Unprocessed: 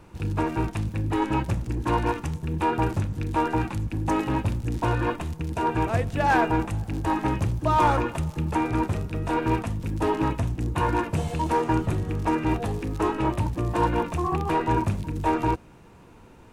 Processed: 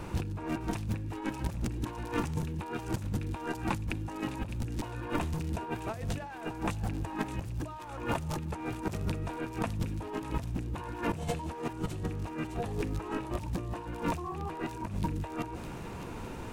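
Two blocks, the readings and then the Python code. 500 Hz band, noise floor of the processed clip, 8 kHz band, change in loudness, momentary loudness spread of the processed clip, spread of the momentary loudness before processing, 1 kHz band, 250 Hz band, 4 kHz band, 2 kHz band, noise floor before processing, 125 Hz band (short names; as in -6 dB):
-10.5 dB, -42 dBFS, -4.0 dB, -10.0 dB, 4 LU, 6 LU, -13.5 dB, -9.0 dB, -6.0 dB, -9.5 dB, -50 dBFS, -8.5 dB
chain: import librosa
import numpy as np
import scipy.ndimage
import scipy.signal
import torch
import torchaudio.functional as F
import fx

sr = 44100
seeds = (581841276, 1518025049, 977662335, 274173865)

p1 = fx.over_compress(x, sr, threshold_db=-36.0, ratio=-1.0)
y = p1 + fx.echo_wet_highpass(p1, sr, ms=609, feedback_pct=47, hz=3200.0, wet_db=-6.0, dry=0)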